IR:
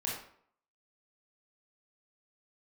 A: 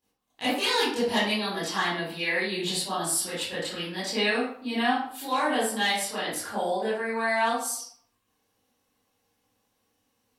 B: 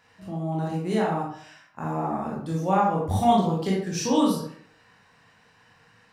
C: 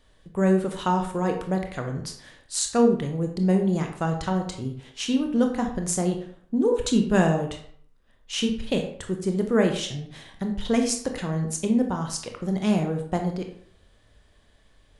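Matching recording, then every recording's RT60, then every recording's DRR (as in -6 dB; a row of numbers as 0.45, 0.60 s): B; 0.60, 0.60, 0.60 s; -13.0, -4.5, 3.5 dB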